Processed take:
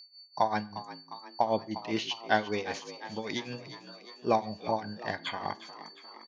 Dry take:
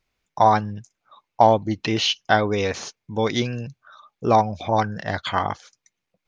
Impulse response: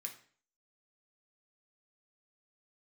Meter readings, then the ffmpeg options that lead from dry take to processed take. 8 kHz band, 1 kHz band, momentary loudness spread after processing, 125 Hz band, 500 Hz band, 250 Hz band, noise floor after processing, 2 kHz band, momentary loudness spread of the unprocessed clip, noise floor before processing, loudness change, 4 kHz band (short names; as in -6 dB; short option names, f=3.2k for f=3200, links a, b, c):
n/a, -11.0 dB, 17 LU, -16.5 dB, -10.5 dB, -10.0 dB, -54 dBFS, -8.0 dB, 15 LU, -81 dBFS, -11.0 dB, -10.5 dB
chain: -filter_complex "[0:a]highpass=120,bandreject=f=1.3k:w=6.4,aeval=exprs='val(0)+0.00891*sin(2*PI*4500*n/s)':c=same,tremolo=f=5.1:d=0.83,asplit=7[a][b][c][d][e][f][g];[b]adelay=354,afreqshift=62,volume=-14.5dB[h];[c]adelay=708,afreqshift=124,volume=-18.9dB[i];[d]adelay=1062,afreqshift=186,volume=-23.4dB[j];[e]adelay=1416,afreqshift=248,volume=-27.8dB[k];[f]adelay=1770,afreqshift=310,volume=-32.2dB[l];[g]adelay=2124,afreqshift=372,volume=-36.7dB[m];[a][h][i][j][k][l][m]amix=inputs=7:normalize=0,asplit=2[n][o];[1:a]atrim=start_sample=2205,lowpass=4.2k[p];[o][p]afir=irnorm=-1:irlink=0,volume=-5dB[q];[n][q]amix=inputs=2:normalize=0,volume=-7dB"